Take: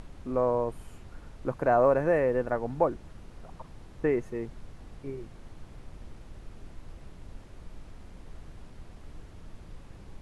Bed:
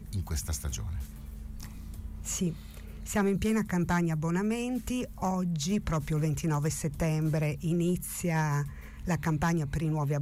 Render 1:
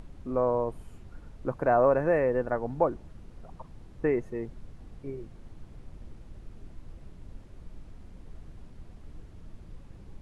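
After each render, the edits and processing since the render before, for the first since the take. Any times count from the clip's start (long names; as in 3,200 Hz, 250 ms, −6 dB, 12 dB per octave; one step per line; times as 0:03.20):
broadband denoise 6 dB, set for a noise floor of −49 dBFS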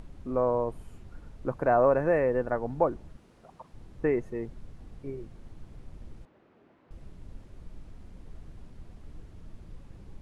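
0:03.16–0:03.74: high-pass filter 330 Hz 6 dB per octave
0:06.25–0:06.91: band-pass filter 350–2,300 Hz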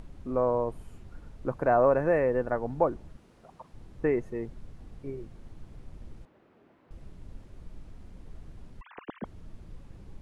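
0:08.81–0:09.25: three sine waves on the formant tracks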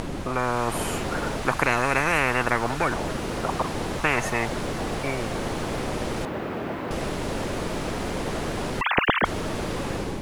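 automatic gain control gain up to 7 dB
every bin compressed towards the loudest bin 10 to 1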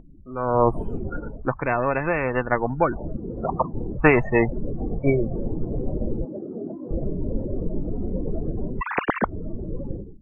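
automatic gain control gain up to 5 dB
every bin expanded away from the loudest bin 4 to 1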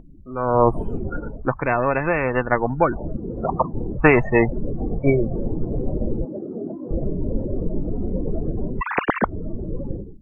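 level +2.5 dB
brickwall limiter −1 dBFS, peak gain reduction 1.5 dB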